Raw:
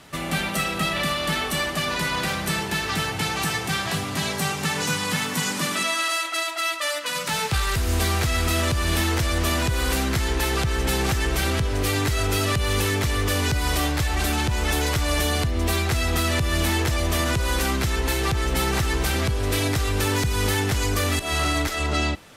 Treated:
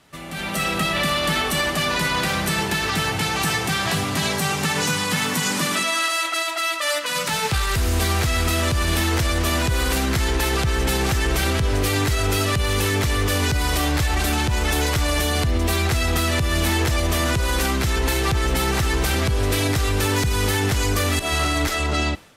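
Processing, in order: limiter -17 dBFS, peak gain reduction 4.5 dB; AGC gain up to 13.5 dB; gain -8 dB

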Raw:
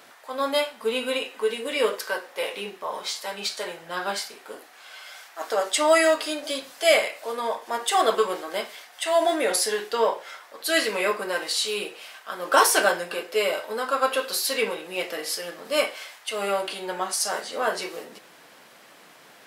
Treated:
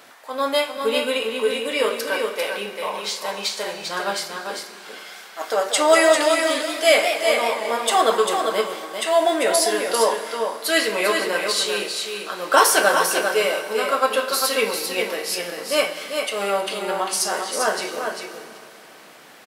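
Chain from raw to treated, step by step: echo 0.396 s -5.5 dB; Schroeder reverb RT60 3.1 s, combs from 27 ms, DRR 11.5 dB; 5.5–7.98 warbling echo 0.185 s, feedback 53%, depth 160 cents, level -9 dB; gain +3 dB

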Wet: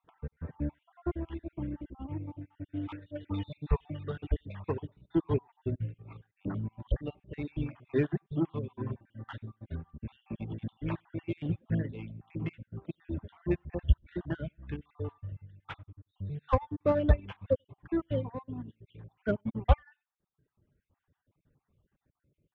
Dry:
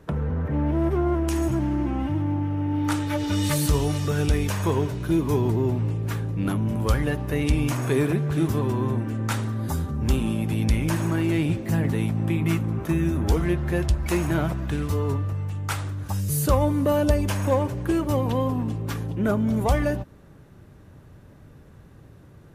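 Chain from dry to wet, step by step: random spectral dropouts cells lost 49%; on a send: echo 92 ms -16.5 dB; on the sum: downsampling 8000 Hz; in parallel at -4 dB: soft clip -26 dBFS, distortion -8 dB; on the sum: reverb removal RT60 1.4 s; upward expander 2.5:1, over -32 dBFS

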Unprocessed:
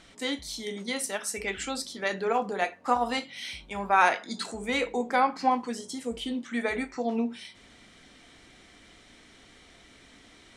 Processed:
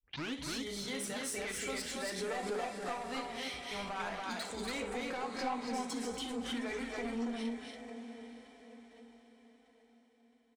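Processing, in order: tape start at the beginning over 0.34 s; gate -42 dBFS, range -59 dB; compressor, threshold -29 dBFS, peak gain reduction 12.5 dB; diffused feedback echo 0.725 s, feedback 44%, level -13 dB; soft clip -31 dBFS, distortion -11 dB; flange 0.44 Hz, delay 1.9 ms, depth 7 ms, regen +56%; on a send: loudspeakers at several distances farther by 22 m -12 dB, 82 m -10 dB, 97 m -2 dB; on the sum: backwards sustainer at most 75 dB/s

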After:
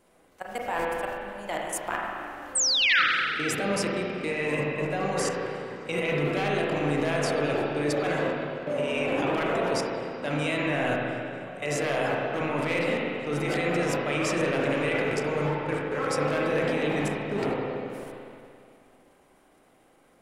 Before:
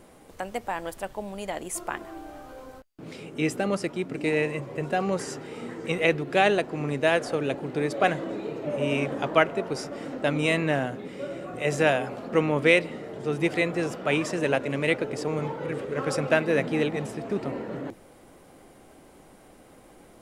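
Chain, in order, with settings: one-sided fold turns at -15 dBFS; low shelf 380 Hz -7 dB; transient shaper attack -3 dB, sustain +8 dB; level quantiser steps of 17 dB; painted sound fall, 2.55–3.02, 1200–8900 Hz -27 dBFS; spring tank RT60 2.4 s, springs 34/40/44 ms, chirp 60 ms, DRR -2.5 dB; gain +3.5 dB

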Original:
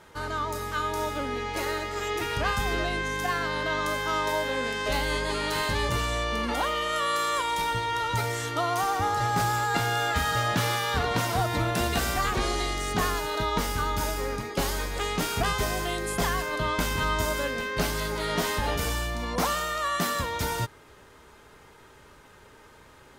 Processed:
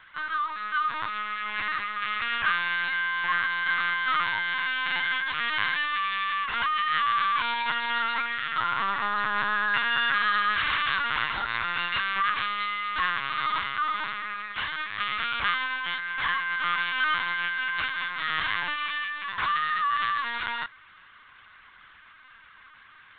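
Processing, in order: inverse Chebyshev high-pass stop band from 380 Hz, stop band 60 dB; tilt -3 dB/oct; LPC vocoder at 8 kHz pitch kept; gain +8.5 dB

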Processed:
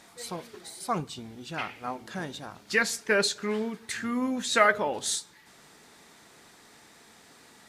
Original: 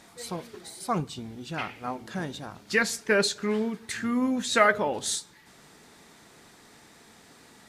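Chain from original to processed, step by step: low shelf 350 Hz -5 dB

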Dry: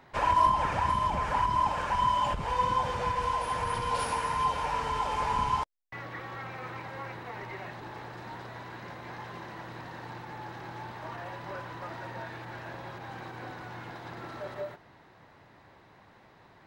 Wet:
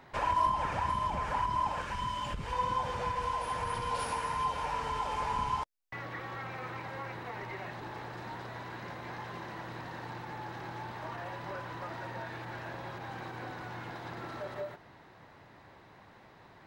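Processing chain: 1.82–2.53 bell 780 Hz -10 dB 1.1 oct; in parallel at +2.5 dB: compressor, threshold -39 dBFS, peak gain reduction 19 dB; on the sum: gain -6.5 dB

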